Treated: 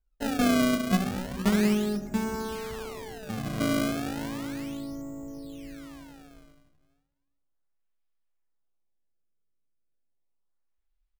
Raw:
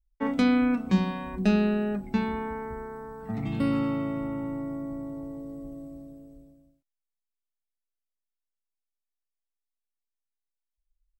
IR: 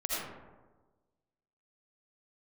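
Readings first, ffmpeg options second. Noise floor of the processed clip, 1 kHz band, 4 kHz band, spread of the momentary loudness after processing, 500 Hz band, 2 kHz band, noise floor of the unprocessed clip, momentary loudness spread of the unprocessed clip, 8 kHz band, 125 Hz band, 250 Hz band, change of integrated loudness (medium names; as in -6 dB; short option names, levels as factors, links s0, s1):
-76 dBFS, 0.0 dB, +6.0 dB, 17 LU, +0.5 dB, +2.0 dB, under -85 dBFS, 17 LU, no reading, -1.5 dB, -1.5 dB, -0.5 dB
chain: -filter_complex "[0:a]asplit=4[s0][s1][s2][s3];[s1]adelay=179,afreqshift=-58,volume=0.0631[s4];[s2]adelay=358,afreqshift=-116,volume=0.0266[s5];[s3]adelay=537,afreqshift=-174,volume=0.0111[s6];[s0][s4][s5][s6]amix=inputs=4:normalize=0,asplit=2[s7][s8];[1:a]atrim=start_sample=2205[s9];[s8][s9]afir=irnorm=-1:irlink=0,volume=0.266[s10];[s7][s10]amix=inputs=2:normalize=0,acrusher=samples=28:mix=1:aa=0.000001:lfo=1:lforange=44.8:lforate=0.34,volume=0.631"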